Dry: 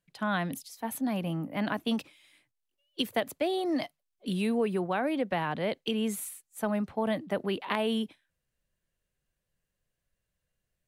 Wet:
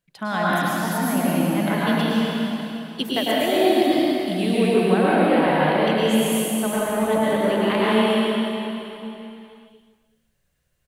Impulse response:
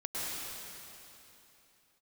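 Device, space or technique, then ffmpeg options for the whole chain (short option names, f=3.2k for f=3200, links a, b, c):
cave: -filter_complex "[0:a]aecho=1:1:379:0.141[a];[1:a]atrim=start_sample=2205[b];[a][b]afir=irnorm=-1:irlink=0,volume=6.5dB"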